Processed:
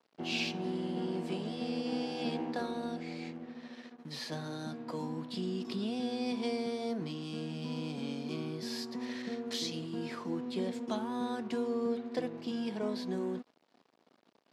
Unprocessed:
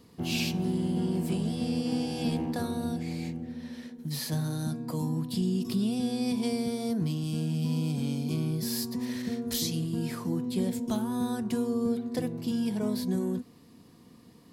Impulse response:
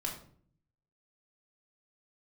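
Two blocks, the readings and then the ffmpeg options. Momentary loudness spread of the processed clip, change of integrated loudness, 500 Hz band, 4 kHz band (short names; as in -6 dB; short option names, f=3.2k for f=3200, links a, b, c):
6 LU, -6.0 dB, -1.5 dB, -3.0 dB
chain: -af "aeval=exprs='sgn(val(0))*max(abs(val(0))-0.00237,0)':c=same,highpass=320,lowpass=4.3k"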